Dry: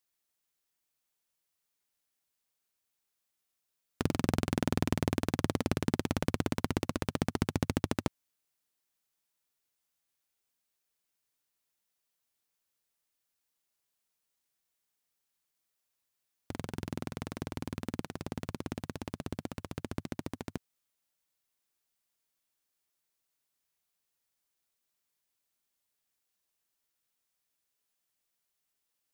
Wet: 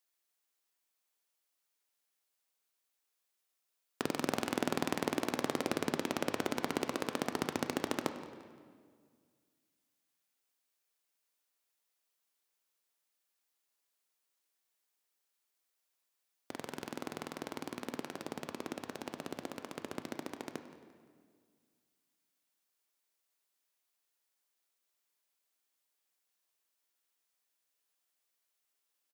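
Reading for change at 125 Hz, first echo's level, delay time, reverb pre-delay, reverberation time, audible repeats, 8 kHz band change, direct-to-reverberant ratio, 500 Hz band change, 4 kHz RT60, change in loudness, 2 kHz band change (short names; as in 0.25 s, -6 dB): -13.5 dB, -17.0 dB, 0.173 s, 10 ms, 1.9 s, 3, 0.0 dB, 7.5 dB, 0.0 dB, 1.4 s, -3.0 dB, +0.5 dB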